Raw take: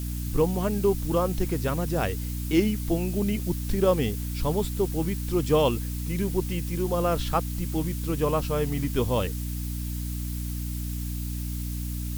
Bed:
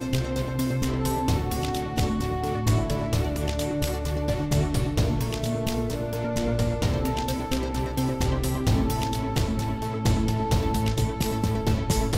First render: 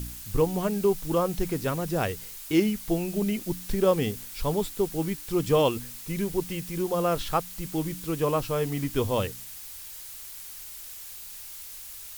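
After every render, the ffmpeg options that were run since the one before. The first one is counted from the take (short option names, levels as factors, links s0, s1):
-af "bandreject=f=60:t=h:w=4,bandreject=f=120:t=h:w=4,bandreject=f=180:t=h:w=4,bandreject=f=240:t=h:w=4,bandreject=f=300:t=h:w=4"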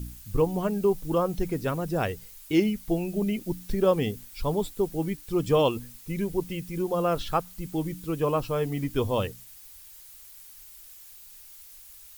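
-af "afftdn=nr=9:nf=-42"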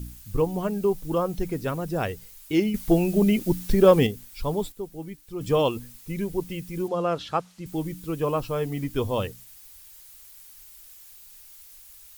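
-filter_complex "[0:a]asettb=1/sr,asplit=3[s0][s1][s2];[s0]atrim=end=2.744[s3];[s1]atrim=start=2.74:end=4.07,asetpts=PTS-STARTPTS,afade=t=in:d=0.004:c=qsin,afade=t=out:st=1.326:d=0.004:c=qsin,acontrast=88[s4];[s2]atrim=start=4.066[s5];[s3][s4]acrossfade=d=0.004:c1=hsin:c2=qsin[s6];[s6][s5]acrossfade=d=0.004:c1=qsin:c2=hsin,asettb=1/sr,asplit=3[s7][s8][s9];[s7]atrim=end=6.884[s10];[s8]atrim=start=6.88:end=7.66,asetpts=PTS-STARTPTS,afade=t=in:d=0.004:c=qsin,afade=t=out:st=0.776:d=0.004:c=qsin,highpass=130,lowpass=6600[s11];[s9]atrim=start=7.656[s12];[s10][s11]acrossfade=d=0.004:c1=hsin:c2=qsin[s13];[s13][s12]acrossfade=d=0.004:c1=qsin:c2=hsin,asplit=3[s14][s15][s16];[s14]atrim=end=4.722[s17];[s15]atrim=start=4.718:end=5.412,asetpts=PTS-STARTPTS,volume=0.398[s18];[s16]atrim=start=5.408[s19];[s17][s18]acrossfade=d=0.004:c1=hsin:c2=hsin[s20];[s20][s19]acrossfade=d=0.004:c1=hsin:c2=hsin"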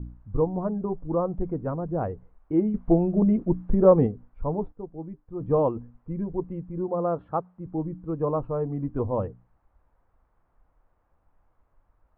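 -af "lowpass=f=1100:w=0.5412,lowpass=f=1100:w=1.3066,bandreject=f=400:w=12"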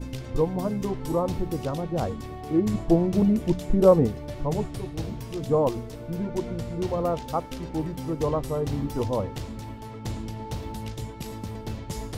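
-filter_complex "[1:a]volume=0.316[s0];[0:a][s0]amix=inputs=2:normalize=0"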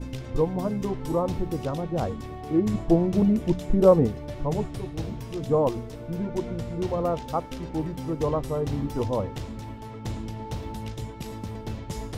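-af "highshelf=f=7200:g=-5,bandreject=f=4500:w=26"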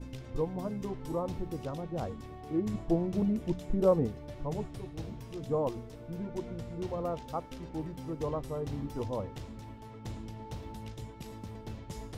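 -af "volume=0.376"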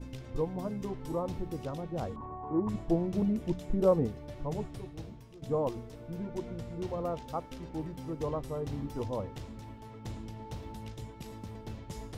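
-filter_complex "[0:a]asettb=1/sr,asplit=3[s0][s1][s2];[s0]atrim=end=2.164[s3];[s1]atrim=start=2.16:end=2.69,asetpts=PTS-STARTPTS,afade=t=in:d=0.004:c=qsin,afade=t=out:st=0.526:d=0.004:c=qsin,lowpass=f=1000:t=q:w=12[s4];[s2]atrim=start=2.686[s5];[s3][s4]acrossfade=d=0.004:c1=hsin:c2=qsin[s6];[s6][s5]acrossfade=d=0.004:c1=qsin:c2=hsin,asplit=2[s7][s8];[s7]atrim=end=5.42,asetpts=PTS-STARTPTS,afade=t=out:st=4.75:d=0.67:silence=0.211349[s9];[s8]atrim=start=5.42,asetpts=PTS-STARTPTS,afade=t=in:d=0.004:c=hsin:silence=0.211349[s10];[s9][s10]concat=n=2:v=0:a=1"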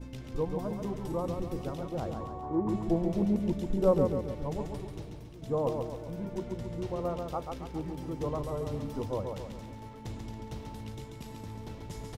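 -af "aecho=1:1:138|276|414|552|690|828:0.562|0.27|0.13|0.0622|0.0299|0.0143"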